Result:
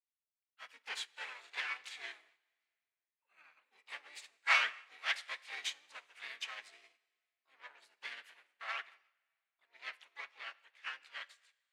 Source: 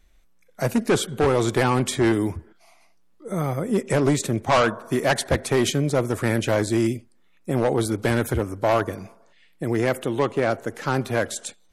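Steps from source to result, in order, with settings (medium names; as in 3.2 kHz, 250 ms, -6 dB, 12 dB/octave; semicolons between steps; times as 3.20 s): transient shaper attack +3 dB, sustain +8 dB; harmony voices -12 st -16 dB, +3 st -1 dB, +12 st -2 dB; ladder band-pass 2.6 kHz, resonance 35%; plate-style reverb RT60 2.2 s, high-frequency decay 0.95×, DRR 7 dB; upward expansion 2.5:1, over -49 dBFS; trim +1.5 dB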